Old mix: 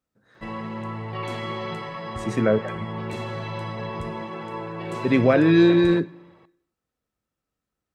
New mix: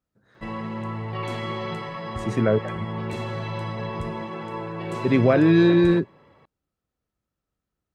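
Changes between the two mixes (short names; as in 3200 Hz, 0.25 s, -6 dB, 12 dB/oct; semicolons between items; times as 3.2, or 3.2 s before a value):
speech: send off; master: add low shelf 200 Hz +3 dB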